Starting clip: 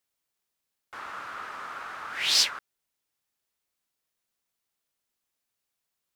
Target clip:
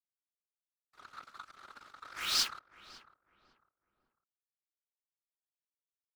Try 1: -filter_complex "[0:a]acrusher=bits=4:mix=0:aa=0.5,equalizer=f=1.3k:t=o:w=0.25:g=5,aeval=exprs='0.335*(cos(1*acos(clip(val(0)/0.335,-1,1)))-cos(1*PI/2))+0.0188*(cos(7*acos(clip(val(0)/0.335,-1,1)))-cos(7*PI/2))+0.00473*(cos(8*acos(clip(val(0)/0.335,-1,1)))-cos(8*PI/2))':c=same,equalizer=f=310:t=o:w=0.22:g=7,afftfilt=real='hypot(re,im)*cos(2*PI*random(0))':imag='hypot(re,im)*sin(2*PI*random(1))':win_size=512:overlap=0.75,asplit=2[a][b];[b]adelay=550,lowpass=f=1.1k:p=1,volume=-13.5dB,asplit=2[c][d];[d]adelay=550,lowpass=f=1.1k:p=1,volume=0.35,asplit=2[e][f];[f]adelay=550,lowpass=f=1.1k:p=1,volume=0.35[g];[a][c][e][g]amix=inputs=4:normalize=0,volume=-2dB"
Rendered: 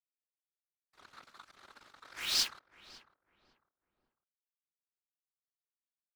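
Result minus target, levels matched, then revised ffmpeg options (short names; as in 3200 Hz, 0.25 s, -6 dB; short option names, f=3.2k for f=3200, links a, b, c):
1000 Hz band -6.0 dB
-filter_complex "[0:a]acrusher=bits=4:mix=0:aa=0.5,equalizer=f=1.3k:t=o:w=0.25:g=15,aeval=exprs='0.335*(cos(1*acos(clip(val(0)/0.335,-1,1)))-cos(1*PI/2))+0.0188*(cos(7*acos(clip(val(0)/0.335,-1,1)))-cos(7*PI/2))+0.00473*(cos(8*acos(clip(val(0)/0.335,-1,1)))-cos(8*PI/2))':c=same,equalizer=f=310:t=o:w=0.22:g=7,afftfilt=real='hypot(re,im)*cos(2*PI*random(0))':imag='hypot(re,im)*sin(2*PI*random(1))':win_size=512:overlap=0.75,asplit=2[a][b];[b]adelay=550,lowpass=f=1.1k:p=1,volume=-13.5dB,asplit=2[c][d];[d]adelay=550,lowpass=f=1.1k:p=1,volume=0.35,asplit=2[e][f];[f]adelay=550,lowpass=f=1.1k:p=1,volume=0.35[g];[a][c][e][g]amix=inputs=4:normalize=0,volume=-2dB"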